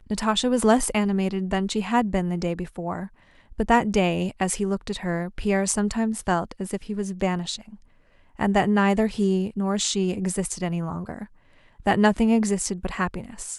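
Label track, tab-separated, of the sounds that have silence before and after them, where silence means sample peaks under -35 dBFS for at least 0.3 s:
3.520000	7.740000	sound
8.390000	11.240000	sound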